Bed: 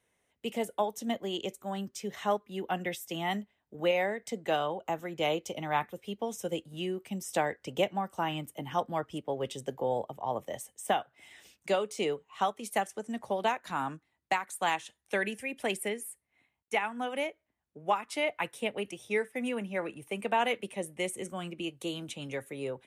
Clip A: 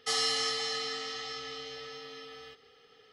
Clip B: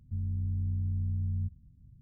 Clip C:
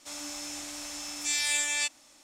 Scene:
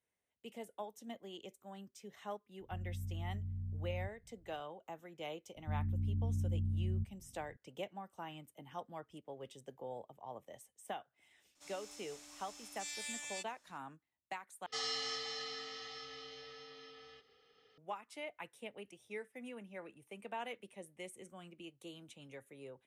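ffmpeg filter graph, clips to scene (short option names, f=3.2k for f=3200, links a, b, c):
-filter_complex "[2:a]asplit=2[a][b];[0:a]volume=-15dB[c];[b]lowpass=f=290:t=q:w=2.4[d];[1:a]lowpass=f=7k:w=0.5412,lowpass=f=7k:w=1.3066[e];[c]asplit=2[f][g];[f]atrim=end=14.664[h];[e]atrim=end=3.12,asetpts=PTS-STARTPTS,volume=-9dB[i];[g]atrim=start=17.776[j];[a]atrim=end=2.01,asetpts=PTS-STARTPTS,volume=-10dB,afade=t=in:d=0.004:c=hsin,afade=t=out:st=2.006:d=0.004:c=hsin,adelay=2600[k];[d]atrim=end=2.01,asetpts=PTS-STARTPTS,volume=-5dB,afade=t=in:d=0.004:c=hsin,afade=t=out:st=2.006:d=0.004:c=hsin,adelay=5560[l];[3:a]atrim=end=2.23,asetpts=PTS-STARTPTS,volume=-16dB,afade=t=in:d=0.004:c=hsin,afade=t=out:st=2.226:d=0.004:c=hsin,adelay=11550[m];[h][i]acrossfade=d=0.004:c1=hsin:c2=hsin[n];[n][j]acrossfade=d=0.004:c1=hsin:c2=hsin[o];[o][k][l][m]amix=inputs=4:normalize=0"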